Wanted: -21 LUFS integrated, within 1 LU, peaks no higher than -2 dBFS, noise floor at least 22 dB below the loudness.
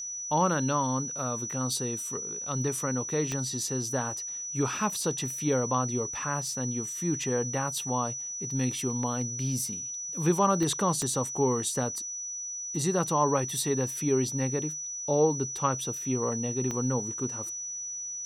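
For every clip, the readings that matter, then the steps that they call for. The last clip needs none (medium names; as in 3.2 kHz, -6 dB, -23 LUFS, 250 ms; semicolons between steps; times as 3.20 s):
clicks found 4; steady tone 5.9 kHz; tone level -34 dBFS; loudness -29.0 LUFS; peak level -12.5 dBFS; loudness target -21.0 LUFS
-> de-click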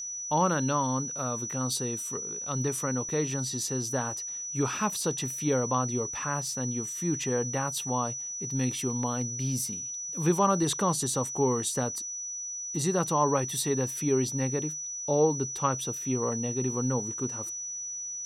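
clicks found 0; steady tone 5.9 kHz; tone level -34 dBFS
-> band-stop 5.9 kHz, Q 30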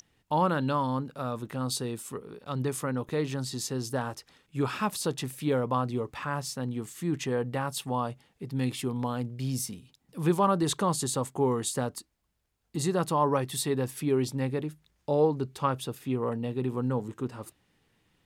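steady tone not found; loudness -30.5 LUFS; peak level -13.0 dBFS; loudness target -21.0 LUFS
-> trim +9.5 dB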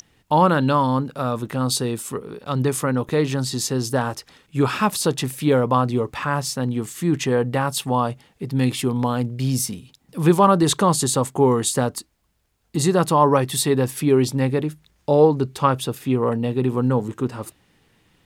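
loudness -21.0 LUFS; peak level -3.5 dBFS; noise floor -64 dBFS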